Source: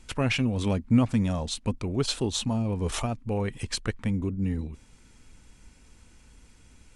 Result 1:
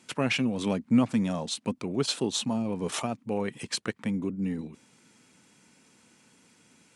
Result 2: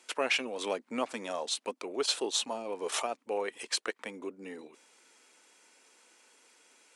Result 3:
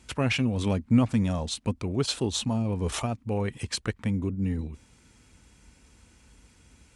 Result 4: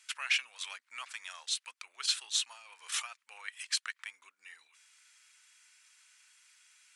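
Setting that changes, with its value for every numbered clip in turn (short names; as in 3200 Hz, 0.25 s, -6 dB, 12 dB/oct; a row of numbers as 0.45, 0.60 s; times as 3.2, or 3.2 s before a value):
HPF, cutoff: 150, 390, 45, 1400 Hz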